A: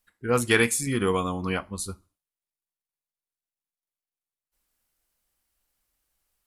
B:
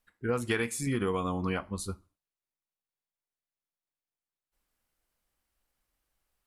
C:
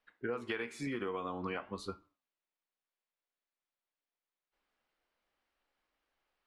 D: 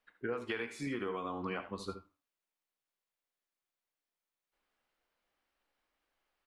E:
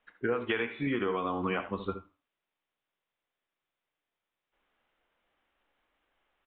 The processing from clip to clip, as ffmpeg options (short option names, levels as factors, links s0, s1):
-af "highshelf=f=3800:g=-8,acompressor=threshold=0.0501:ratio=6"
-filter_complex "[0:a]acrossover=split=250 4400:gain=0.2 1 0.0708[s0][s1][s2];[s0][s1][s2]amix=inputs=3:normalize=0,acompressor=threshold=0.0141:ratio=6,flanger=delay=6.5:depth=7.5:regen=87:speed=0.51:shape=sinusoidal,volume=2.24"
-af "aecho=1:1:70|80:0.158|0.211"
-af "aresample=8000,aresample=44100,volume=2.24"